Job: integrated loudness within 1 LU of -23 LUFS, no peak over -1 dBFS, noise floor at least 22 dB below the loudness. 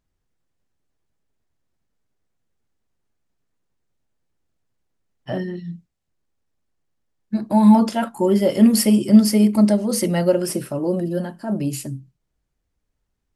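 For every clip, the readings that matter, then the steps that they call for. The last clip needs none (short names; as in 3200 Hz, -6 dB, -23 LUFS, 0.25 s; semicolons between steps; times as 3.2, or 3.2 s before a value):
loudness -18.0 LUFS; peak -2.5 dBFS; loudness target -23.0 LUFS
-> gain -5 dB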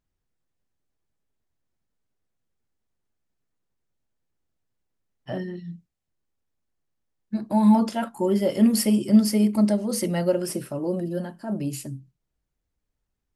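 loudness -23.0 LUFS; peak -7.5 dBFS; noise floor -81 dBFS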